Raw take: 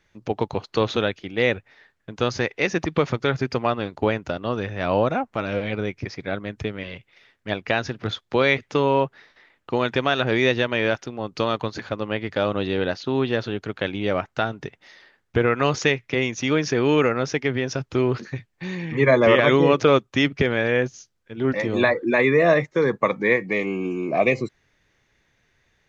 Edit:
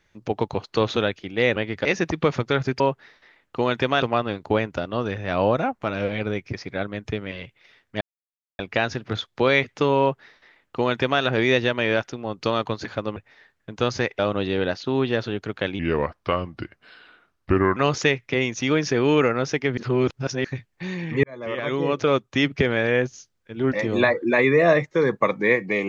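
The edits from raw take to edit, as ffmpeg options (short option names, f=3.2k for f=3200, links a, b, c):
-filter_complex "[0:a]asplit=13[a][b][c][d][e][f][g][h][i][j][k][l][m];[a]atrim=end=1.562[n];[b]atrim=start=12.098:end=12.392[o];[c]atrim=start=2.588:end=3.542[p];[d]atrim=start=8.938:end=10.162[q];[e]atrim=start=3.538:end=7.53,asetpts=PTS-STARTPTS,afade=t=out:st=3.988:d=0.004:c=hsin,apad=pad_dur=0.58[r];[f]atrim=start=7.53:end=12.102,asetpts=PTS-STARTPTS,afade=t=in:d=0.004:c=hsin[s];[g]atrim=start=1.558:end=2.592[t];[h]atrim=start=12.388:end=13.994[u];[i]atrim=start=13.99:end=15.57,asetpts=PTS-STARTPTS,asetrate=35280,aresample=44100[v];[j]atrim=start=15.566:end=17.582[w];[k]atrim=start=17.578:end=18.252,asetpts=PTS-STARTPTS,areverse[x];[l]atrim=start=18.248:end=19.04,asetpts=PTS-STARTPTS,afade=t=out:st=0.788:d=0.004:c=hsin[y];[m]atrim=start=19.04,asetpts=PTS-STARTPTS,afade=t=in:d=1.31[z];[n][o]acrossfade=d=0.004:c1=hsin:c2=hsin[aa];[aa][p]acrossfade=d=0.004:c1=hsin:c2=hsin[ab];[ab][q]acrossfade=d=0.004:c1=hsin:c2=hsin[ac];[r][s]concat=n=2:v=0:a=1[ad];[ac][ad]acrossfade=d=0.004:c1=hsin:c2=hsin[ae];[ae][t]acrossfade=d=0.004:c1=hsin:c2=hsin[af];[af][u]acrossfade=d=0.004:c1=hsin:c2=hsin[ag];[ag][v]acrossfade=d=0.004:c1=hsin:c2=hsin[ah];[ah][w]acrossfade=d=0.004:c1=hsin:c2=hsin[ai];[ai][x]acrossfade=d=0.004:c1=hsin:c2=hsin[aj];[y][z]concat=n=2:v=0:a=1[ak];[aj][ak]acrossfade=d=0.004:c1=hsin:c2=hsin"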